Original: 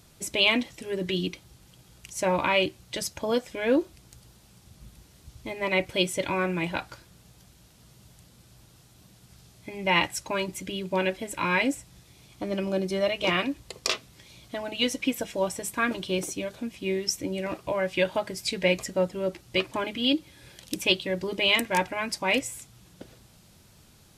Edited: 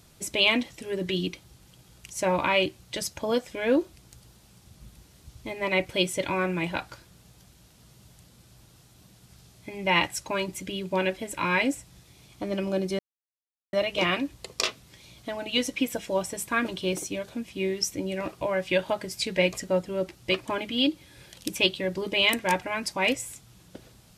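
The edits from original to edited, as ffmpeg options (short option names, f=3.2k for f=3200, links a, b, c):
-filter_complex "[0:a]asplit=2[a][b];[a]atrim=end=12.99,asetpts=PTS-STARTPTS,afade=t=out:st=12.986:d=0.004:c=hsin,apad=pad_dur=0.74[c];[b]atrim=start=12.99,asetpts=PTS-STARTPTS,afade=t=in:d=0.004:c=hsin[d];[c][d]concat=n=2:v=0:a=1"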